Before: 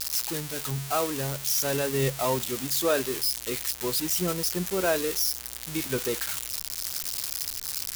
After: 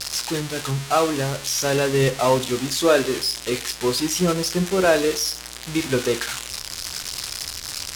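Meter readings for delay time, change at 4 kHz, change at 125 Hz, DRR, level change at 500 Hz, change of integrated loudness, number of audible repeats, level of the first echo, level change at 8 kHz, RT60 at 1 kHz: no echo audible, +6.5 dB, +7.0 dB, 10.5 dB, +8.0 dB, +5.0 dB, no echo audible, no echo audible, +3.0 dB, 0.45 s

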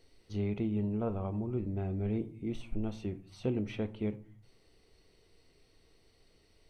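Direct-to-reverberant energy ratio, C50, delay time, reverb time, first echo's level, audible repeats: 10.0 dB, 18.0 dB, no echo audible, 0.45 s, no echo audible, no echo audible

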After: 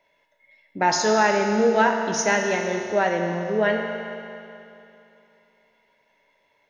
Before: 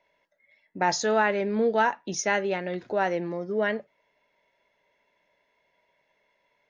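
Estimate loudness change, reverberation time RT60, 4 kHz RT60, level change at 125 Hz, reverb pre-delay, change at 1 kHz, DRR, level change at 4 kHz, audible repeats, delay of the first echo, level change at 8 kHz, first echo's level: +4.5 dB, 2.8 s, 2.7 s, +5.5 dB, 3 ms, +5.0 dB, 2.5 dB, +6.0 dB, no echo audible, no echo audible, can't be measured, no echo audible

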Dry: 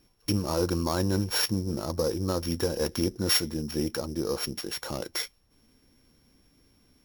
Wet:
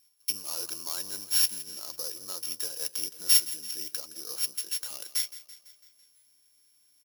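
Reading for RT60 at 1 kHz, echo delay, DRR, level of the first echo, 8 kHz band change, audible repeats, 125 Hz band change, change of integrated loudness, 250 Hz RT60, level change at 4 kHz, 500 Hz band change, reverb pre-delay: no reverb audible, 167 ms, no reverb audible, −16.0 dB, +5.5 dB, 5, below −30 dB, +0.5 dB, no reverb audible, +0.5 dB, −20.0 dB, no reverb audible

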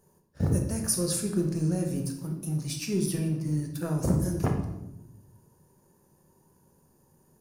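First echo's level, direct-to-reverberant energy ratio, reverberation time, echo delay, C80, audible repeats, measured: no echo audible, 2.0 dB, 0.85 s, no echo audible, 9.0 dB, no echo audible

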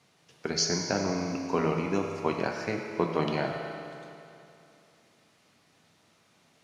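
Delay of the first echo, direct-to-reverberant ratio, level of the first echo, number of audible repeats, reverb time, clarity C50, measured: no echo audible, 1.5 dB, no echo audible, no echo audible, 2.7 s, 3.0 dB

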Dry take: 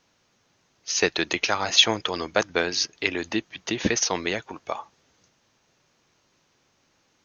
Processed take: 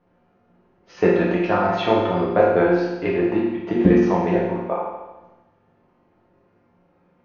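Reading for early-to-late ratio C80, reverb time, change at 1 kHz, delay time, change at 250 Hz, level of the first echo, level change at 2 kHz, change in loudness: 3.5 dB, 1.1 s, +7.5 dB, no echo audible, +11.5 dB, no echo audible, −2.5 dB, +4.5 dB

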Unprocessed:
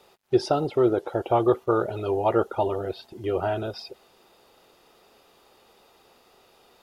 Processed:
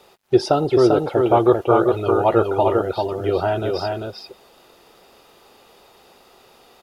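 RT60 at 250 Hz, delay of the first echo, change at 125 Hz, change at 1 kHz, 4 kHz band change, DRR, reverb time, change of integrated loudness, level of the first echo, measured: no reverb audible, 394 ms, +7.0 dB, +7.0 dB, +7.0 dB, no reverb audible, no reverb audible, +6.5 dB, −4.0 dB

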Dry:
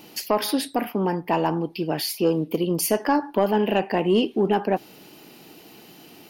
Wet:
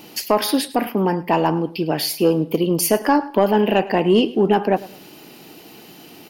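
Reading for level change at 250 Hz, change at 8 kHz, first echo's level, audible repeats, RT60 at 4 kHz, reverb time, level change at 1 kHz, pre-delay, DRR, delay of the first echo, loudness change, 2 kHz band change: +4.5 dB, +4.5 dB, −19.0 dB, 2, no reverb audible, no reverb audible, +4.5 dB, no reverb audible, no reverb audible, 105 ms, +4.5 dB, +4.5 dB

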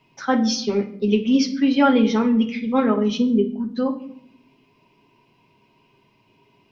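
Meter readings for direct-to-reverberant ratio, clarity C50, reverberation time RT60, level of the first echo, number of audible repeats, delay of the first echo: 1.5 dB, 12.0 dB, 0.65 s, no echo audible, no echo audible, no echo audible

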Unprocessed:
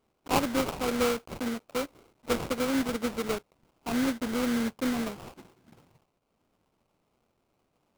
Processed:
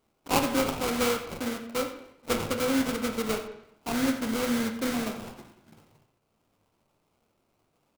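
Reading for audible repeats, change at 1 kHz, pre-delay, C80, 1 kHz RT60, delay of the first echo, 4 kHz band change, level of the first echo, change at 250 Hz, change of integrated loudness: 1, +1.5 dB, 6 ms, 10.0 dB, 0.80 s, 90 ms, +3.0 dB, −15.0 dB, +0.5 dB, +1.5 dB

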